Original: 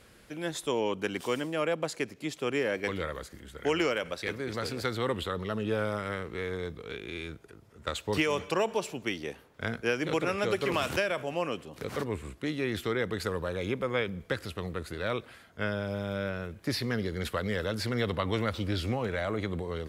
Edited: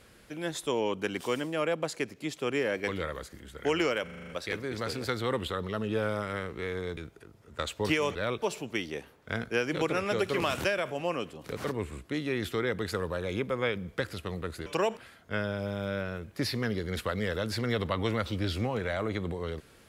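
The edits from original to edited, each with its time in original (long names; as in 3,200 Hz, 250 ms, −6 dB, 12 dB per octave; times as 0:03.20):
0:04.04: stutter 0.04 s, 7 plays
0:06.73–0:07.25: remove
0:08.43–0:08.74: swap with 0:14.98–0:15.25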